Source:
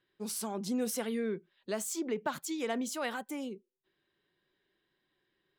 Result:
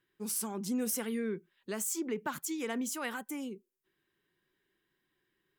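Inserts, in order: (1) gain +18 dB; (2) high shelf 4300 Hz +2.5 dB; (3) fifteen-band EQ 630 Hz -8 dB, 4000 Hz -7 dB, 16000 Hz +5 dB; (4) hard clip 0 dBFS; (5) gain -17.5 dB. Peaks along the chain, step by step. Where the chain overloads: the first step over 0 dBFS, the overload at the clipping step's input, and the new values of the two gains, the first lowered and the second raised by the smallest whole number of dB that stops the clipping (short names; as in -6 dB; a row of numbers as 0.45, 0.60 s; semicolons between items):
-1.0, -1.0, -4.0, -4.0, -21.5 dBFS; no overload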